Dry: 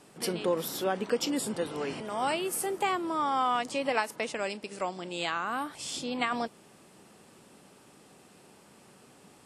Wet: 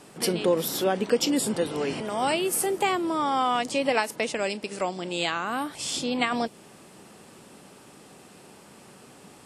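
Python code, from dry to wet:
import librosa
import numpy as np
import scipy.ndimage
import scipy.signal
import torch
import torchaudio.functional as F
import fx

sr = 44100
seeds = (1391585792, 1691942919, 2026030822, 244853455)

y = fx.dynamic_eq(x, sr, hz=1200.0, q=1.1, threshold_db=-43.0, ratio=4.0, max_db=-5)
y = F.gain(torch.from_numpy(y), 6.5).numpy()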